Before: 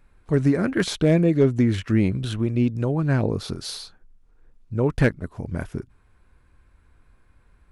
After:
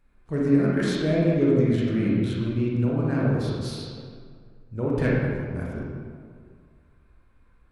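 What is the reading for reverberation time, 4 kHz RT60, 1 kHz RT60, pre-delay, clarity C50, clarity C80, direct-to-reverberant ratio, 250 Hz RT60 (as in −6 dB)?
2.0 s, 1.2 s, 1.9 s, 27 ms, −2.0 dB, 0.0 dB, −5.0 dB, 2.1 s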